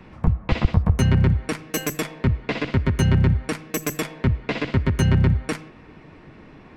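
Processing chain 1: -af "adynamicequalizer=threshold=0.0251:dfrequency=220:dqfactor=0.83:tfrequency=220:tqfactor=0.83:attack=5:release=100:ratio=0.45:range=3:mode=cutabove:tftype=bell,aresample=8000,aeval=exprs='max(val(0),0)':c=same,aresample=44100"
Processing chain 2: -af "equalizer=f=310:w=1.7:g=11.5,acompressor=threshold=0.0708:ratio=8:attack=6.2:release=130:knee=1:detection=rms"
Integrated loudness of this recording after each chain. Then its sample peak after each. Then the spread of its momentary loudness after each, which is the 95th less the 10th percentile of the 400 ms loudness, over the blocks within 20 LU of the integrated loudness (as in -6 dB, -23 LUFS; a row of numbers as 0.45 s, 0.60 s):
-29.0 LUFS, -30.0 LUFS; -6.0 dBFS, -12.5 dBFS; 10 LU, 11 LU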